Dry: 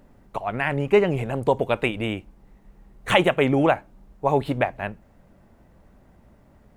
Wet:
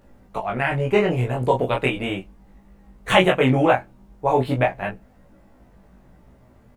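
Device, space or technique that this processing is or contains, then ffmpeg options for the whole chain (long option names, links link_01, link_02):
double-tracked vocal: -filter_complex "[0:a]asplit=2[link_01][link_02];[link_02]adelay=16,volume=-3dB[link_03];[link_01][link_03]amix=inputs=2:normalize=0,flanger=delay=19.5:depth=5:speed=0.37,volume=3.5dB"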